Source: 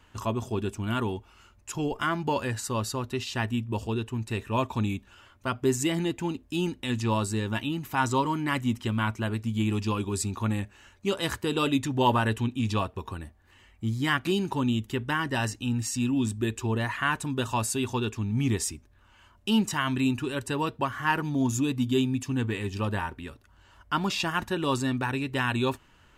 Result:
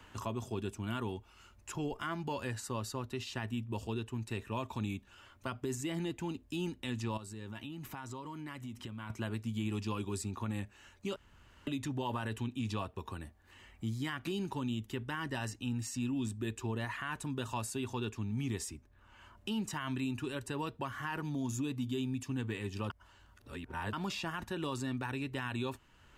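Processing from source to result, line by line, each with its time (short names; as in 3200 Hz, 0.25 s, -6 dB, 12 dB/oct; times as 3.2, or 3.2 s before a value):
7.17–9.1 compressor 8:1, threshold -36 dBFS
11.16–11.67 room tone
22.9–23.93 reverse
whole clip: limiter -20 dBFS; three-band squash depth 40%; gain -8 dB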